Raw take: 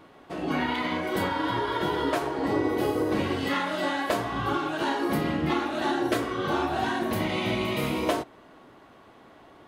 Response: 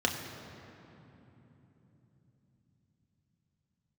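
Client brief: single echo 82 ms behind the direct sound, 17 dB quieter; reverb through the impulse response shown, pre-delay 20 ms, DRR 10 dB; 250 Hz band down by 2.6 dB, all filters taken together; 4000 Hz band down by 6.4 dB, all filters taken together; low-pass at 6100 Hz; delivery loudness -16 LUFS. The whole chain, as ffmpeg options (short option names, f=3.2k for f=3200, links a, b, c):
-filter_complex "[0:a]lowpass=6.1k,equalizer=f=250:t=o:g=-3.5,equalizer=f=4k:t=o:g=-8.5,aecho=1:1:82:0.141,asplit=2[a][b];[1:a]atrim=start_sample=2205,adelay=20[c];[b][c]afir=irnorm=-1:irlink=0,volume=-19.5dB[d];[a][d]amix=inputs=2:normalize=0,volume=12.5dB"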